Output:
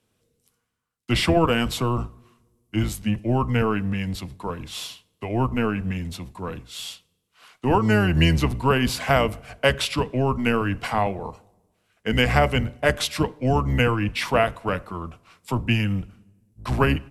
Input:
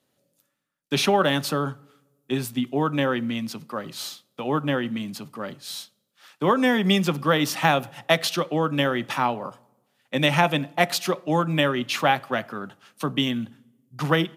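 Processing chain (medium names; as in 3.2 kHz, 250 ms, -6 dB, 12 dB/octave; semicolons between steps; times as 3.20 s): octave divider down 1 oct, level 0 dB; tape speed -16%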